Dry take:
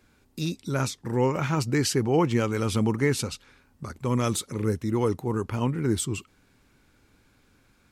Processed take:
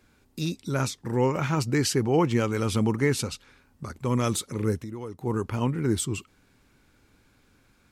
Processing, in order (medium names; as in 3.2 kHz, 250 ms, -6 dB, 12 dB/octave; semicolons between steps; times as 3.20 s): 4.78–5.21 s: compression 3:1, threshold -38 dBFS, peak gain reduction 13.5 dB